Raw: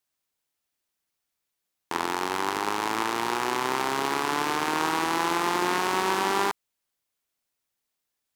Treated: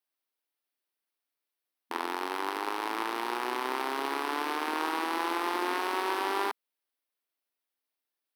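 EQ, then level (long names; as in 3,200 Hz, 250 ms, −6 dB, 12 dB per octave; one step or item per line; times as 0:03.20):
linear-phase brick-wall high-pass 230 Hz
parametric band 7,000 Hz −12.5 dB 0.47 octaves
−5.0 dB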